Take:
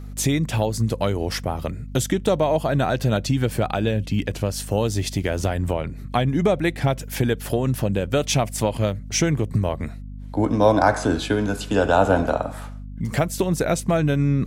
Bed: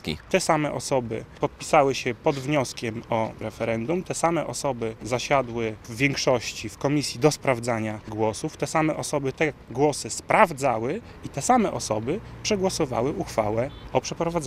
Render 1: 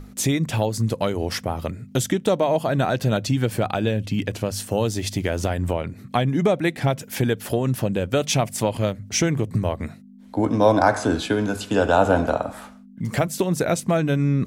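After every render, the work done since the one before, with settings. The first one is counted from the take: hum notches 50/100/150 Hz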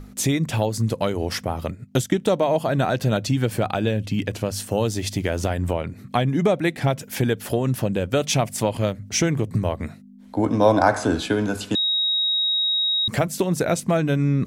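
1.68–2.18 s: transient shaper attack +2 dB, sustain -9 dB; 11.75–13.08 s: bleep 3.79 kHz -18.5 dBFS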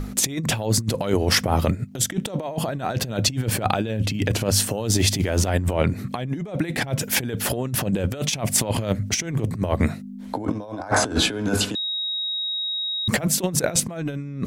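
in parallel at -3 dB: peak limiter -13 dBFS, peak gain reduction 10 dB; on the sum: compressor with a negative ratio -22 dBFS, ratio -0.5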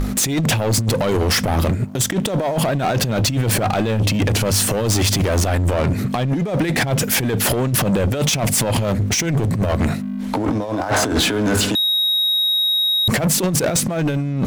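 peak limiter -12.5 dBFS, peak gain reduction 7 dB; waveshaping leveller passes 3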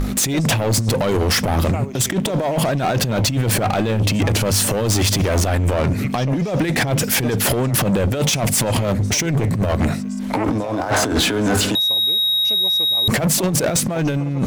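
add bed -11.5 dB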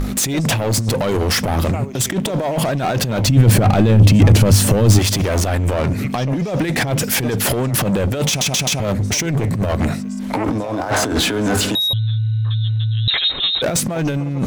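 3.25–4.99 s: bass shelf 300 Hz +11 dB; 8.28 s: stutter in place 0.13 s, 4 plays; 11.93–13.62 s: frequency inversion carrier 3.9 kHz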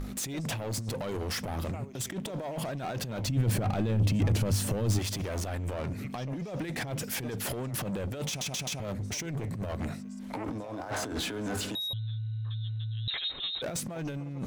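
trim -16 dB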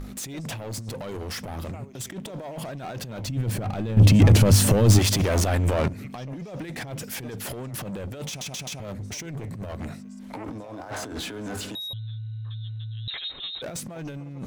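3.97–5.88 s: gain +11.5 dB

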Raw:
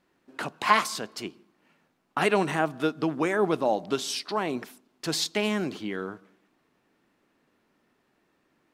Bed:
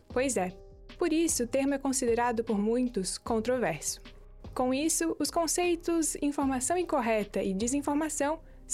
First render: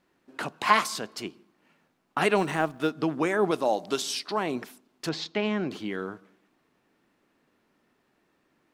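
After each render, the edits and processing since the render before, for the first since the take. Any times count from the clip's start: 2.38–2.91 s: companding laws mixed up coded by A; 3.51–4.02 s: tone controls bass -6 dB, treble +7 dB; 5.09–5.71 s: distance through air 200 m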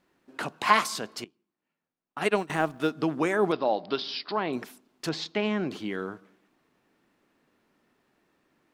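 1.24–2.50 s: upward expansion 2.5:1, over -33 dBFS; 3.52–4.53 s: Chebyshev low-pass 5 kHz, order 6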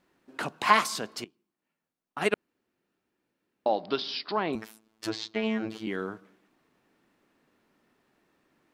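2.34–3.66 s: room tone; 4.55–5.87 s: robot voice 110 Hz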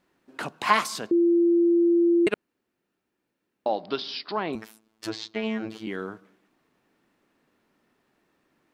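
1.11–2.27 s: bleep 342 Hz -16.5 dBFS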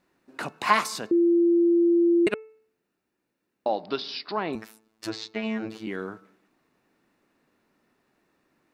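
band-stop 3.2 kHz, Q 12; de-hum 438 Hz, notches 6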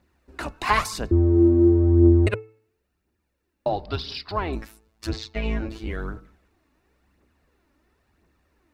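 octave divider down 2 oct, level +3 dB; phaser 0.97 Hz, delay 3.7 ms, feedback 44%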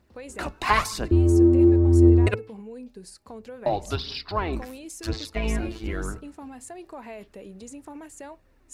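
add bed -12 dB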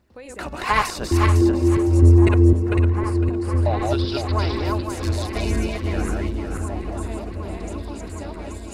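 backward echo that repeats 253 ms, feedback 52%, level -1.5 dB; on a send: delay with an opening low-pass 759 ms, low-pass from 400 Hz, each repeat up 1 oct, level -6 dB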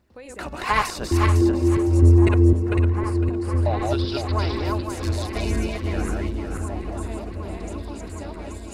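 trim -1.5 dB

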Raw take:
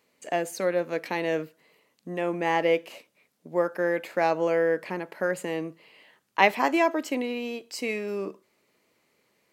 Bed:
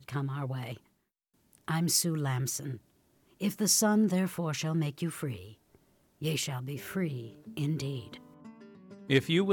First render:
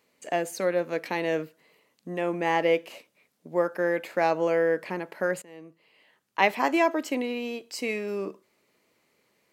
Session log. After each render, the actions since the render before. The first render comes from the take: 5.42–6.78 s: fade in, from -22 dB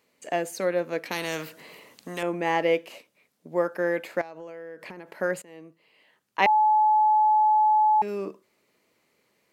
1.11–2.23 s: spectrum-flattening compressor 2:1; 4.21–5.14 s: compression 20:1, threshold -36 dBFS; 6.46–8.02 s: bleep 857 Hz -16.5 dBFS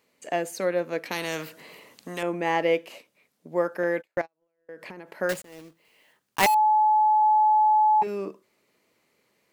3.83–4.69 s: gate -36 dBFS, range -38 dB; 5.29–6.55 s: block-companded coder 3-bit; 7.21–8.07 s: doubling 12 ms -4.5 dB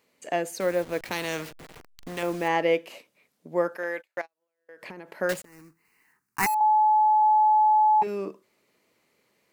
0.60–2.48 s: send-on-delta sampling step -38.5 dBFS; 3.76–4.83 s: high-pass 970 Hz 6 dB/octave; 5.45–6.61 s: static phaser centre 1.4 kHz, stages 4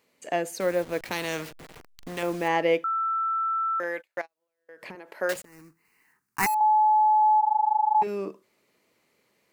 2.84–3.80 s: bleep 1.33 kHz -23.5 dBFS; 4.95–5.36 s: high-pass 330 Hz; 7.40–7.95 s: AM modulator 25 Hz, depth 85%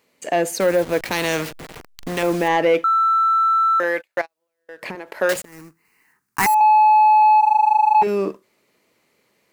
in parallel at +1 dB: peak limiter -19 dBFS, peak gain reduction 8 dB; on the sum: waveshaping leveller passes 1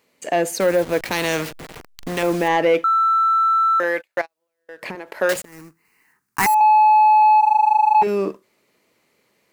no audible change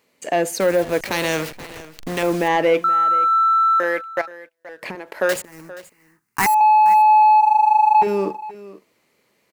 delay 476 ms -17.5 dB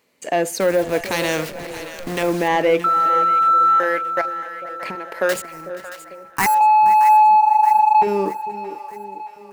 two-band feedback delay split 640 Hz, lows 447 ms, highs 625 ms, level -12.5 dB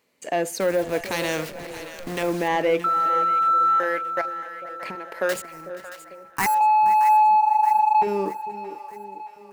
trim -4.5 dB

